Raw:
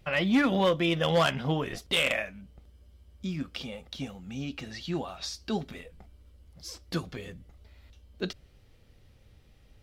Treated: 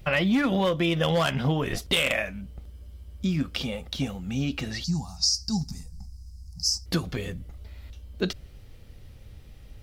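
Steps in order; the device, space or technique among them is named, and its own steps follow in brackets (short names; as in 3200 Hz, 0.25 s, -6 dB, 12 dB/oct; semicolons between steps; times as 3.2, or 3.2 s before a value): 4.84–6.86 EQ curve 190 Hz 0 dB, 340 Hz -20 dB, 580 Hz -28 dB, 820 Hz -7 dB, 1400 Hz -20 dB, 3300 Hz -24 dB, 5000 Hz +13 dB, 13000 Hz -3 dB; ASMR close-microphone chain (low shelf 140 Hz +6.5 dB; compressor 6:1, threshold -27 dBFS, peak gain reduction 8.5 dB; high shelf 10000 Hz +6.5 dB); gain +6.5 dB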